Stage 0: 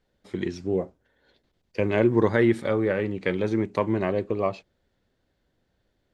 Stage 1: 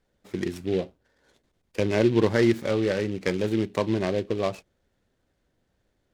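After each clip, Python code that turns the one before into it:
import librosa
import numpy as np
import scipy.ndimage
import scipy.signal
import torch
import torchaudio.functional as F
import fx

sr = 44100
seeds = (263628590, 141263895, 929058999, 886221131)

y = fx.dynamic_eq(x, sr, hz=1100.0, q=1.3, threshold_db=-39.0, ratio=4.0, max_db=-4)
y = fx.noise_mod_delay(y, sr, seeds[0], noise_hz=2600.0, depth_ms=0.038)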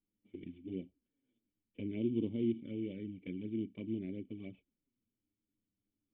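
y = fx.env_flanger(x, sr, rest_ms=9.9, full_db=-19.5)
y = fx.formant_cascade(y, sr, vowel='i')
y = F.gain(torch.from_numpy(y), -4.0).numpy()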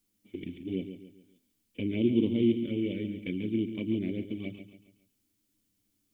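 y = fx.high_shelf(x, sr, hz=2800.0, db=11.0)
y = fx.echo_feedback(y, sr, ms=139, feedback_pct=41, wet_db=-10.0)
y = F.gain(torch.from_numpy(y), 8.0).numpy()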